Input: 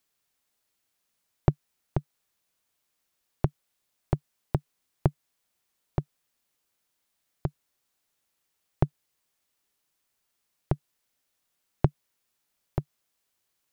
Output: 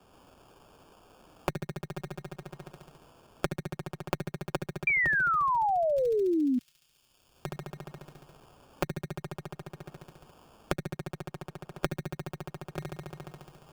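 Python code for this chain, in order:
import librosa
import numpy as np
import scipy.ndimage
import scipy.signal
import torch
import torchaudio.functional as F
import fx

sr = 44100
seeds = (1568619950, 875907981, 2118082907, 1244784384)

y = fx.hpss(x, sr, part='harmonic', gain_db=-5)
y = fx.level_steps(y, sr, step_db=23)
y = fx.low_shelf(y, sr, hz=130.0, db=5.5)
y = fx.room_flutter(y, sr, wall_m=12.0, rt60_s=1.5)
y = fx.cheby_harmonics(y, sr, harmonics=(4,), levels_db=(-13,), full_scale_db=-8.5)
y = fx.low_shelf(y, sr, hz=380.0, db=-11.5)
y = y + 0.65 * np.pad(y, (int(5.3 * sr / 1000.0), 0))[:len(y)]
y = fx.sample_hold(y, sr, seeds[0], rate_hz=2000.0, jitter_pct=0)
y = fx.spec_paint(y, sr, seeds[1], shape='fall', start_s=4.87, length_s=1.72, low_hz=240.0, high_hz=2400.0, level_db=-19.0)
y = fx.band_squash(y, sr, depth_pct=100)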